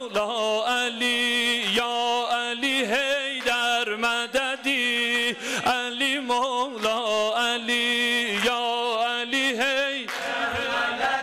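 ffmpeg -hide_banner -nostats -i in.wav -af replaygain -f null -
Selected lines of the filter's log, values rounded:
track_gain = +3.9 dB
track_peak = 0.107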